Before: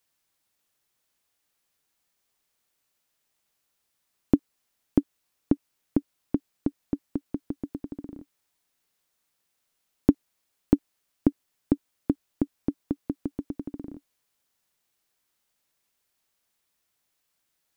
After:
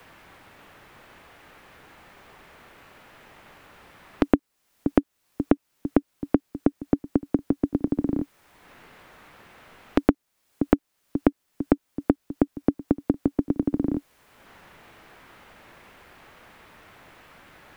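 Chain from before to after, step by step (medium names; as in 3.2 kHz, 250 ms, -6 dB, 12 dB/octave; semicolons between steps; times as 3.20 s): pre-echo 115 ms -18 dB; three bands compressed up and down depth 100%; trim +5.5 dB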